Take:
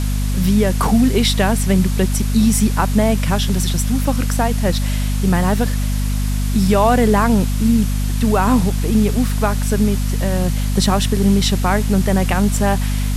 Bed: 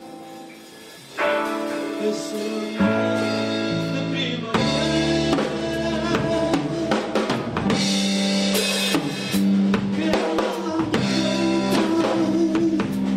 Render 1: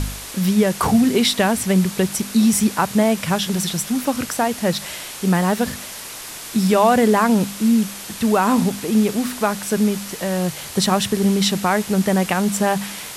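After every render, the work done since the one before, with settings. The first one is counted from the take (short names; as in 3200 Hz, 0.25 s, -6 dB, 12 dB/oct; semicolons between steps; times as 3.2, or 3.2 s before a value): de-hum 50 Hz, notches 5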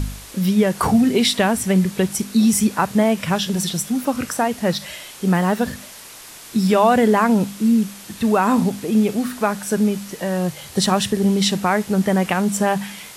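noise print and reduce 6 dB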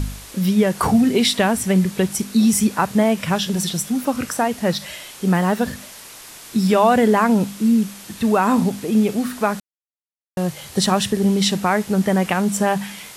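9.6–10.37 mute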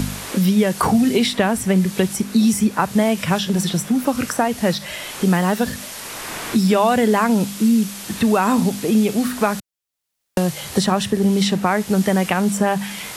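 three-band squash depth 70%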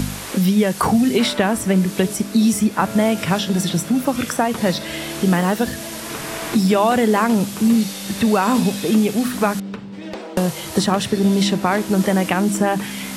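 add bed -10.5 dB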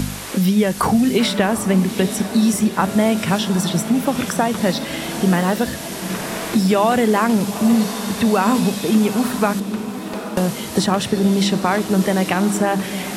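diffused feedback echo 0.82 s, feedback 52%, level -11.5 dB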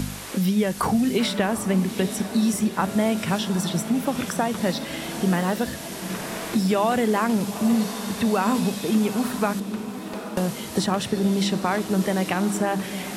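gain -5.5 dB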